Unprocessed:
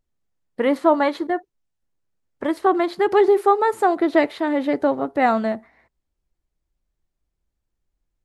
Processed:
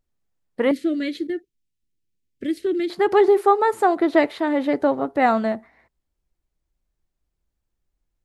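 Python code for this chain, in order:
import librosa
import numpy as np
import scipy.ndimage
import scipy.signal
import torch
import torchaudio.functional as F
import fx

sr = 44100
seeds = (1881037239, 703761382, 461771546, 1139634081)

y = fx.cheby1_bandstop(x, sr, low_hz=340.0, high_hz=2500.0, order=2, at=(0.71, 2.9))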